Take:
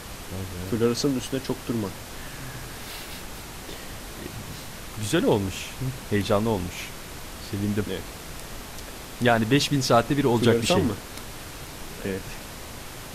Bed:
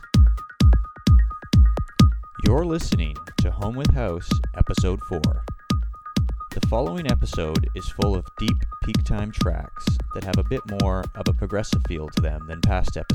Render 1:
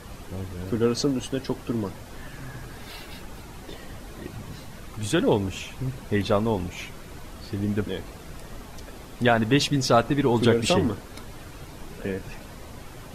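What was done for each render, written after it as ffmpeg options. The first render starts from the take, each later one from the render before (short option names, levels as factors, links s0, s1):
-af "afftdn=nr=9:nf=-39"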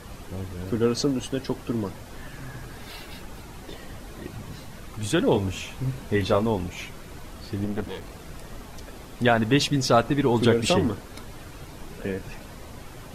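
-filter_complex "[0:a]asettb=1/sr,asplit=3[s0][s1][s2];[s0]atrim=end=5.324[s3];[s1]atrim=start=5.32:end=6.46,asetpts=PTS-STARTPTS,afade=t=in:d=0.004:c=qsin,afade=t=out:st=1.136:d=0.004:c=qsin,asplit=2[s4][s5];[s5]adelay=22,volume=0.447[s6];[s4][s6]amix=inputs=2:normalize=0,atrim=end_sample=50274[s7];[s2]atrim=start=6.456[s8];[s3][s7]acrossfade=d=0.004:c1=hsin:c2=qsin[s9];[s9][s8]acrossfade=d=0.004:c1=qsin:c2=hsin,asettb=1/sr,asplit=3[s10][s11][s12];[s10]atrim=end=7.644[s13];[s11]atrim=start=7.64:end=8.1,asetpts=PTS-STARTPTS,afade=t=in:d=0.004:c=qsin,afade=t=out:st=0.456:d=0.004:c=qsin,aeval=exprs='clip(val(0),-1,0.0158)':c=same[s14];[s12]atrim=start=8.096[s15];[s13][s14]acrossfade=d=0.004:c1=hsin:c2=qsin[s16];[s16][s15]acrossfade=d=0.004:c1=qsin:c2=hsin"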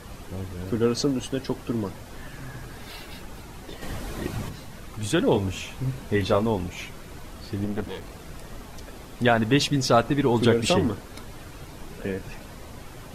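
-filter_complex "[0:a]asplit=3[s0][s1][s2];[s0]afade=t=out:st=3.81:d=0.02[s3];[s1]acontrast=68,afade=t=in:st=3.81:d=0.02,afade=t=out:st=4.48:d=0.02[s4];[s2]afade=t=in:st=4.48:d=0.02[s5];[s3][s4][s5]amix=inputs=3:normalize=0"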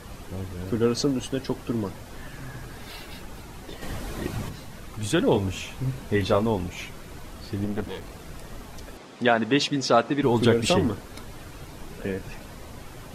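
-filter_complex "[0:a]asettb=1/sr,asplit=3[s0][s1][s2];[s0]atrim=end=8.974[s3];[s1]atrim=start=8.97:end=10.23,asetpts=PTS-STARTPTS,afade=t=in:d=0.004:c=qsin,afade=t=out:st=1.256:d=0.004:c=qsin,highpass=200,lowpass=6800[s4];[s2]atrim=start=10.226[s5];[s3][s4]acrossfade=d=0.004:c1=hsin:c2=qsin[s6];[s6][s5]acrossfade=d=0.004:c1=qsin:c2=hsin"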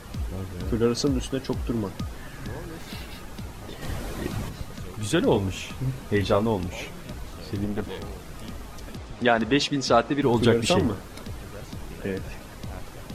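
-filter_complex "[1:a]volume=0.126[s0];[0:a][s0]amix=inputs=2:normalize=0"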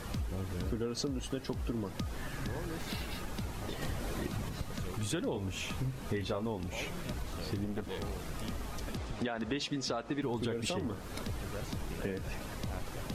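-af "alimiter=limit=0.224:level=0:latency=1:release=127,acompressor=threshold=0.0224:ratio=5"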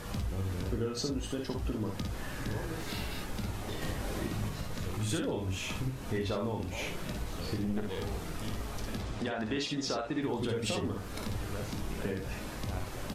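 -filter_complex "[0:a]asplit=2[s0][s1];[s1]adelay=19,volume=0.282[s2];[s0][s2]amix=inputs=2:normalize=0,aecho=1:1:54|64:0.531|0.376"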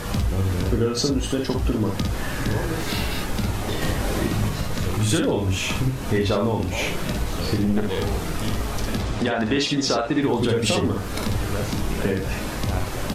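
-af "volume=3.98"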